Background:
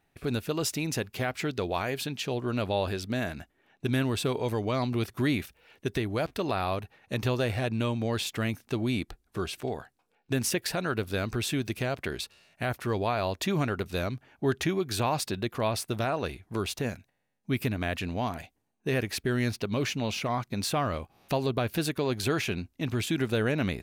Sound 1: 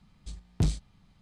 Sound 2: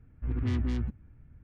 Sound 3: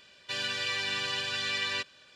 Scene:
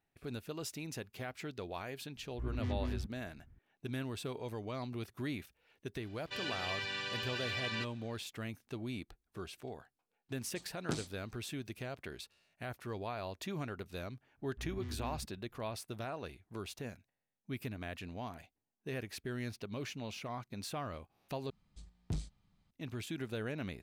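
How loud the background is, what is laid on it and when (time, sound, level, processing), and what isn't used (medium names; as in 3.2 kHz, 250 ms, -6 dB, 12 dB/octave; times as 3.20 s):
background -12.5 dB
2.16 s: add 2 -8 dB
6.02 s: add 3 -5 dB + treble shelf 4.3 kHz -9 dB
10.29 s: add 1 -2 dB + Chebyshev high-pass 310 Hz
14.35 s: add 2 -14.5 dB, fades 0.05 s
21.50 s: replace with 1 -12 dB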